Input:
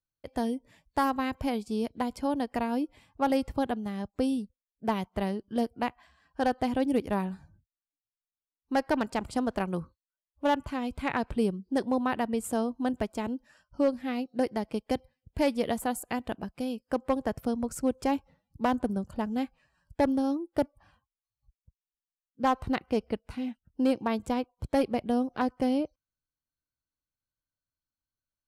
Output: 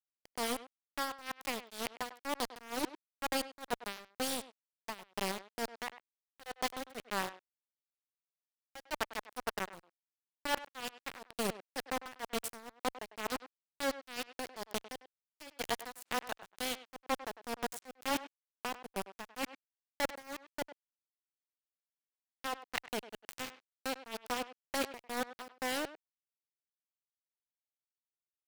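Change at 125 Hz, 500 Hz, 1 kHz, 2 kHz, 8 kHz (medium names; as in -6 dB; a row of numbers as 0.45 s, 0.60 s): -15.0 dB, -11.0 dB, -8.0 dB, -1.5 dB, +3.0 dB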